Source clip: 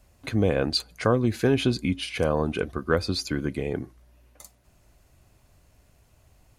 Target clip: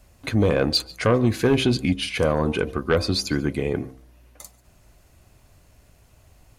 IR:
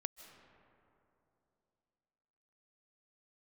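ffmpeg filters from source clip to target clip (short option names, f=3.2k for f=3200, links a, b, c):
-filter_complex "[0:a]bandreject=f=65:t=h:w=4,bandreject=f=130:t=h:w=4,bandreject=f=195:t=h:w=4,bandreject=f=260:t=h:w=4,bandreject=f=325:t=h:w=4,bandreject=f=390:t=h:w=4,bandreject=f=455:t=h:w=4,bandreject=f=520:t=h:w=4,bandreject=f=585:t=h:w=4,bandreject=f=650:t=h:w=4,bandreject=f=715:t=h:w=4,bandreject=f=780:t=h:w=4,bandreject=f=845:t=h:w=4,bandreject=f=910:t=h:w=4,bandreject=f=975:t=h:w=4,bandreject=f=1.04k:t=h:w=4,bandreject=f=1.105k:t=h:w=4,aeval=exprs='0.398*sin(PI/2*1.58*val(0)/0.398)':c=same[a];[1:a]atrim=start_sample=2205,atrim=end_sample=6615[b];[a][b]afir=irnorm=-1:irlink=0"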